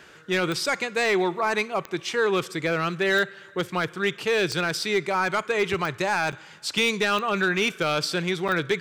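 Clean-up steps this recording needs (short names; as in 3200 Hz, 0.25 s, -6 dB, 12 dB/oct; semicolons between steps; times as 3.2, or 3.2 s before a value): clip repair -15.5 dBFS; de-click; interpolate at 6.32/8.48, 6.3 ms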